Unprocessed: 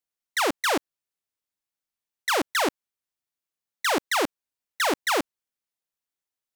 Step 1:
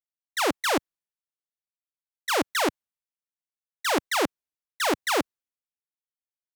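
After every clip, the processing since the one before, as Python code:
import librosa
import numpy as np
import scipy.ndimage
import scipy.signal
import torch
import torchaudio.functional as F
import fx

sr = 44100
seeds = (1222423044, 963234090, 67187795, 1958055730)

y = fx.band_widen(x, sr, depth_pct=70)
y = F.gain(torch.from_numpy(y), -1.0).numpy()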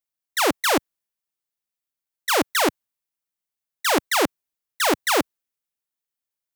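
y = fx.high_shelf(x, sr, hz=11000.0, db=7.0)
y = F.gain(torch.from_numpy(y), 4.0).numpy()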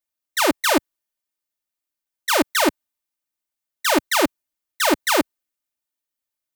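y = x + 0.65 * np.pad(x, (int(3.3 * sr / 1000.0), 0))[:len(x)]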